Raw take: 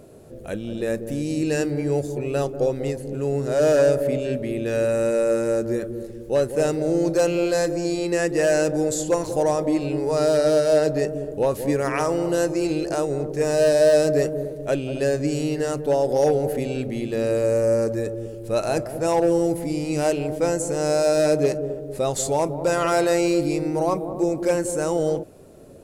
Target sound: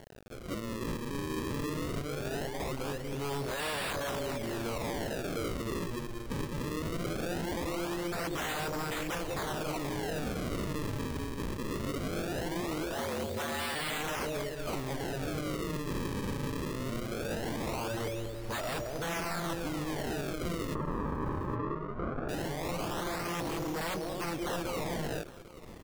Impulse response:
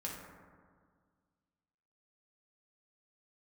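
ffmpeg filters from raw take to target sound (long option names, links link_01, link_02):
-filter_complex "[0:a]asubboost=boost=3.5:cutoff=80,acrusher=samples=35:mix=1:aa=0.000001:lfo=1:lforange=56:lforate=0.2,aeval=exprs='0.0631*(abs(mod(val(0)/0.0631+3,4)-2)-1)':channel_layout=same,asplit=3[link_01][link_02][link_03];[link_01]afade=type=out:start_time=12.94:duration=0.02[link_04];[link_02]afreqshift=82,afade=type=in:start_time=12.94:duration=0.02,afade=type=out:start_time=13.74:duration=0.02[link_05];[link_03]afade=type=in:start_time=13.74:duration=0.02[link_06];[link_04][link_05][link_06]amix=inputs=3:normalize=0,acrusher=bits=6:mix=0:aa=0.000001,asettb=1/sr,asplit=3[link_07][link_08][link_09];[link_07]atrim=end=20.754[link_10];[link_08]atrim=start=20.75:end=22.29,asetpts=PTS-STARTPTS,afade=type=in:duration=0.004:curve=qsin,afade=type=out:start_time=1.536:duration=0.004:curve=qsin,lowpass=frequency=1200:width_type=q:width=2.2[link_11];[link_09]atrim=start=22.286[link_12];[link_10][link_11]acrossfade=duration=0.004:curve1=hsin:curve2=qsin[link_13];[link_13][link_12]acrossfade=duration=0.004:curve1=qsin:curve2=hsin,asplit=2[link_14][link_15];[link_15]aecho=0:1:809:0.106[link_16];[link_14][link_16]amix=inputs=2:normalize=0,volume=-6dB"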